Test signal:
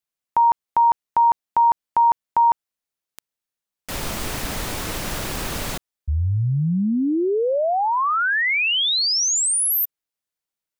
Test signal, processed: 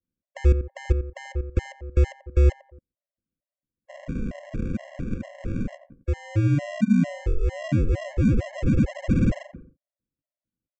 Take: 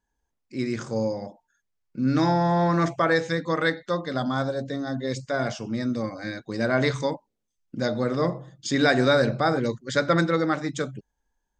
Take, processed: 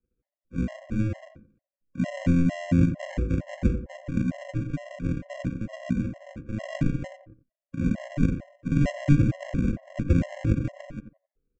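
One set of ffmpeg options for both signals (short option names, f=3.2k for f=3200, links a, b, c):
-filter_complex "[0:a]aresample=16000,acrusher=samples=37:mix=1:aa=0.000001,aresample=44100,highshelf=f=2.6k:g=-10.5,asplit=2[a][b];[b]adelay=88,lowpass=f=1.2k:p=1,volume=-10dB,asplit=2[c][d];[d]adelay=88,lowpass=f=1.2k:p=1,volume=0.3,asplit=2[e][f];[f]adelay=88,lowpass=f=1.2k:p=1,volume=0.3[g];[a][c][e][g]amix=inputs=4:normalize=0,acrossover=split=300|2100[h][i][j];[i]acompressor=threshold=-56dB:ratio=1.5:release=39:knee=2.83:detection=peak[k];[h][k][j]amix=inputs=3:normalize=0,equalizer=f=250:t=o:w=1:g=4,equalizer=f=500:t=o:w=1:g=10,equalizer=f=1k:t=o:w=1:g=-9,equalizer=f=2k:t=o:w=1:g=9,equalizer=f=4k:t=o:w=1:g=-10,afftfilt=real='re*gt(sin(2*PI*2.2*pts/sr)*(1-2*mod(floor(b*sr/1024/550),2)),0)':imag='im*gt(sin(2*PI*2.2*pts/sr)*(1-2*mod(floor(b*sr/1024/550),2)),0)':win_size=1024:overlap=0.75"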